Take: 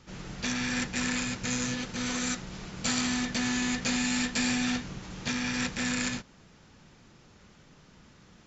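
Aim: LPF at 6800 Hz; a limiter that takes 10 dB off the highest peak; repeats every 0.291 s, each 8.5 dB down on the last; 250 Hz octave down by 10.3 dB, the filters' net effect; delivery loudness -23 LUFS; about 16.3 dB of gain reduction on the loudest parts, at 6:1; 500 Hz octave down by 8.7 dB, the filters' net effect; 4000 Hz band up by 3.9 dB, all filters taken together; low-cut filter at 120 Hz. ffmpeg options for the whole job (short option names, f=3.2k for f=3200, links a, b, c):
-af "highpass=120,lowpass=6.8k,equalizer=f=250:t=o:g=-9,equalizer=f=500:t=o:g=-8,equalizer=f=4k:t=o:g=5.5,acompressor=threshold=-44dB:ratio=6,alimiter=level_in=14dB:limit=-24dB:level=0:latency=1,volume=-14dB,aecho=1:1:291|582|873|1164:0.376|0.143|0.0543|0.0206,volume=23dB"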